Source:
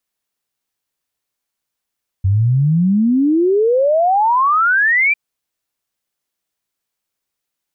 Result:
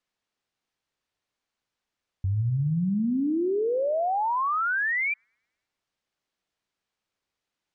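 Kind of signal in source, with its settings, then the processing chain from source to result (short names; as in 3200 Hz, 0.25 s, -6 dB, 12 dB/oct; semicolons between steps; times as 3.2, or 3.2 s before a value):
log sweep 92 Hz -> 2400 Hz 2.90 s -10.5 dBFS
limiter -22 dBFS; air absorption 100 m; dark delay 0.106 s, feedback 52%, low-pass 430 Hz, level -15 dB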